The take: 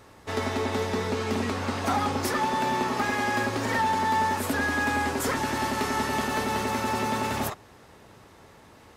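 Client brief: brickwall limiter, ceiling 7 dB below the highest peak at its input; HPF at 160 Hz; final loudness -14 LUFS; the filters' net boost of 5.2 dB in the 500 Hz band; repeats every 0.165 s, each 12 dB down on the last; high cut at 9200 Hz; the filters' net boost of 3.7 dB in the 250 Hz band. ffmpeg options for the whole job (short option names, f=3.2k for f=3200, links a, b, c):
-af "highpass=160,lowpass=9.2k,equalizer=f=250:t=o:g=3.5,equalizer=f=500:t=o:g=5.5,alimiter=limit=-18.5dB:level=0:latency=1,aecho=1:1:165|330|495:0.251|0.0628|0.0157,volume=13dB"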